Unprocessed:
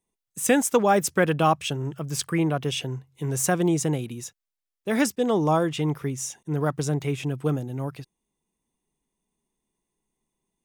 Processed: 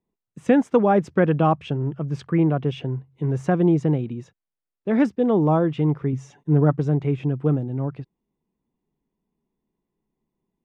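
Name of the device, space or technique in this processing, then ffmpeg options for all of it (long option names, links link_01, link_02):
phone in a pocket: -filter_complex "[0:a]lowpass=3300,equalizer=frequency=190:width_type=o:width=2.8:gain=5.5,highshelf=frequency=2200:gain=-10,asettb=1/sr,asplit=3[link_01][link_02][link_03];[link_01]atrim=end=6.124[link_04];[link_02]atrim=start=6.12:end=6.79,asetpts=PTS-STARTPTS,afade=type=in:duration=0.004:curve=qsin,afade=type=out:start_time=0.666:duration=0.004:curve=qsin,aecho=1:1:7:0.7,atrim=end_sample=29547[link_05];[link_03]atrim=start=6.786[link_06];[link_04][link_05]acrossfade=duration=0.004:curve1=hsin:curve2=qsin[link_07];[link_07][link_06]acrossfade=duration=0.004:curve1=qsin:curve2=hsin"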